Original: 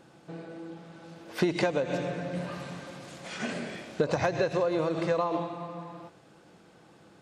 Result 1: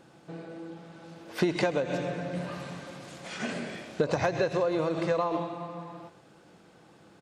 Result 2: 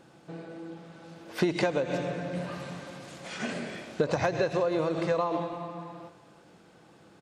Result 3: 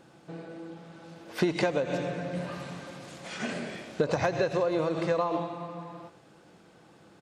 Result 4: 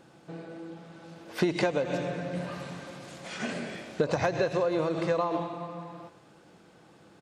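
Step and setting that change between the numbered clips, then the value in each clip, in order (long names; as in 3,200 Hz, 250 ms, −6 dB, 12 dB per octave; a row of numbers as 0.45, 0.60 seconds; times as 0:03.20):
far-end echo of a speakerphone, delay time: 130, 330, 90, 220 milliseconds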